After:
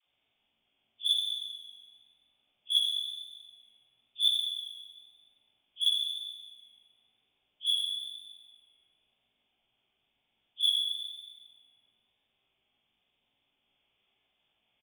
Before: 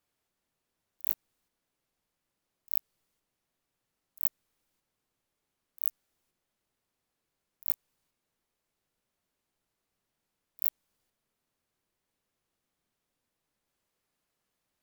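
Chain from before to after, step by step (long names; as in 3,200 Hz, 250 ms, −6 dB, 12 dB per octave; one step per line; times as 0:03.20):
hearing-aid frequency compression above 2,000 Hz 4 to 1
parametric band 750 Hz +6.5 dB 0.61 octaves
in parallel at −5 dB: wave folding −26.5 dBFS
on the sum: all-pass dispersion lows, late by 63 ms, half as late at 520 Hz
on a send at −1 dB: convolution reverb RT60 1.5 s, pre-delay 55 ms
on the sum: pitch vibrato 1 Hz 20 cents
double-tracking delay 18 ms −4 dB
level −7 dB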